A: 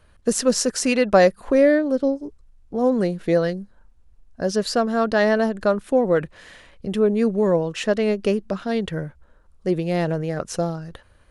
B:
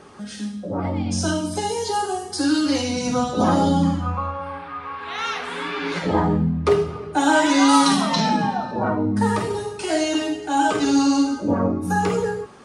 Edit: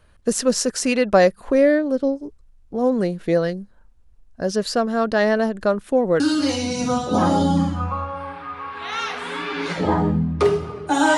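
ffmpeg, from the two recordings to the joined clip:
-filter_complex "[0:a]apad=whole_dur=11.17,atrim=end=11.17,atrim=end=6.202[a];[1:a]atrim=start=2.458:end=7.43[b];[a][b]acrossfade=d=0.004:c1=hsin:c2=hsin"

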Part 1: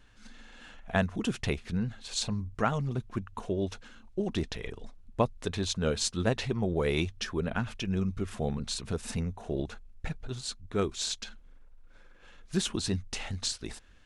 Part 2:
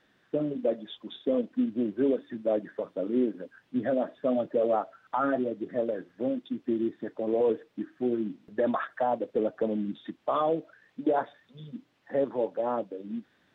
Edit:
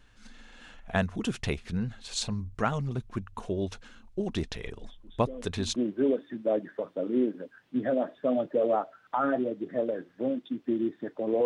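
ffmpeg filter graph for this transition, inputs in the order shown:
-filter_complex "[1:a]asplit=2[a][b];[0:a]apad=whole_dur=11.45,atrim=end=11.45,atrim=end=5.762[c];[b]atrim=start=1.758:end=7.45[d];[a]atrim=start=0.76:end=1.76,asetpts=PTS-STARTPTS,volume=-14.5dB,afade=t=in:d=0.004:c=hsin,afade=t=out:st=0.996:d=0.004:c=hsin,adelay=4760[e];[c][d]acrossfade=d=0.004:c1=hsin:c2=hsin[f];[f][e]amix=inputs=2:normalize=0"

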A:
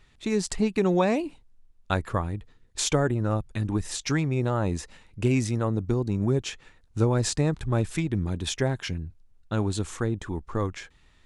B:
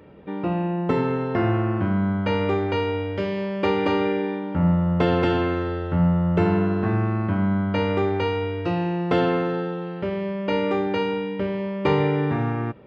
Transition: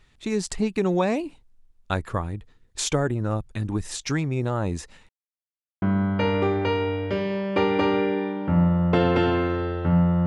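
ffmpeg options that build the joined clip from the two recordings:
-filter_complex "[0:a]apad=whole_dur=10.26,atrim=end=10.26,asplit=2[a][b];[a]atrim=end=5.09,asetpts=PTS-STARTPTS,afade=t=out:st=5.086:d=0.004:c=hsin[c];[b]atrim=start=5.09:end=5.82,asetpts=PTS-STARTPTS,volume=0[d];[1:a]atrim=start=1.89:end=6.33,asetpts=PTS-STARTPTS,afade=t=in:d=0.004:c=hsin[e];[c][d][e]concat=n=3:v=0:a=1"

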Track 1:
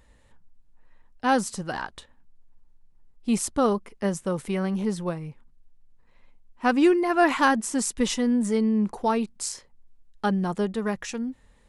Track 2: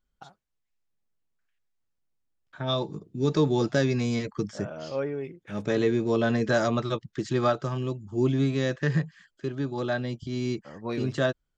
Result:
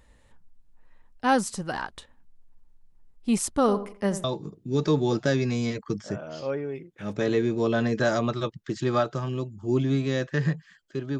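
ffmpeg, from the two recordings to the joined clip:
-filter_complex "[0:a]asplit=3[a][b][c];[a]afade=t=out:st=3.67:d=0.02[d];[b]asplit=2[e][f];[f]adelay=85,lowpass=f=1.5k:p=1,volume=-11dB,asplit=2[g][h];[h]adelay=85,lowpass=f=1.5k:p=1,volume=0.31,asplit=2[i][j];[j]adelay=85,lowpass=f=1.5k:p=1,volume=0.31[k];[e][g][i][k]amix=inputs=4:normalize=0,afade=t=in:st=3.67:d=0.02,afade=t=out:st=4.24:d=0.02[l];[c]afade=t=in:st=4.24:d=0.02[m];[d][l][m]amix=inputs=3:normalize=0,apad=whole_dur=11.19,atrim=end=11.19,atrim=end=4.242[n];[1:a]atrim=start=2.728:end=9.68[o];[n][o]acrossfade=d=0.004:c1=hsin:c2=hsin"

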